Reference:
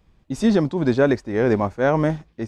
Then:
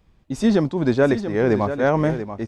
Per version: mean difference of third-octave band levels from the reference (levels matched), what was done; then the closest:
2.0 dB: single-tap delay 685 ms −10.5 dB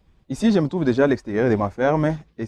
1.0 dB: spectral magnitudes quantised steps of 15 dB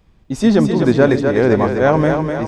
4.5 dB: echo with a time of its own for lows and highs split 370 Hz, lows 138 ms, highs 250 ms, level −5.5 dB
level +4.5 dB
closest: second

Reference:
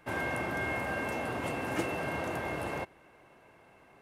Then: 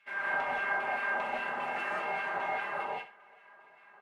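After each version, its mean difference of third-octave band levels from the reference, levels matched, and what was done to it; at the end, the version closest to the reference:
10.0 dB: auto-filter band-pass saw down 2.5 Hz 680–2,800 Hz
comb filter 5 ms, depth 86%
flutter between parallel walls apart 11.3 metres, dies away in 0.32 s
reverb whose tail is shaped and stops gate 210 ms rising, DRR −4.5 dB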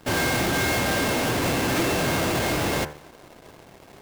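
5.5 dB: each half-wave held at its own peak
hum removal 74.83 Hz, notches 35
dynamic equaliser 760 Hz, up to −4 dB, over −46 dBFS, Q 1
leveller curve on the samples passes 3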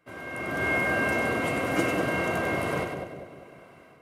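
4.0 dB: automatic gain control gain up to 14.5 dB
notch comb filter 860 Hz
echo with a time of its own for lows and highs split 740 Hz, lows 198 ms, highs 97 ms, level −5 dB
level −7.5 dB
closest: third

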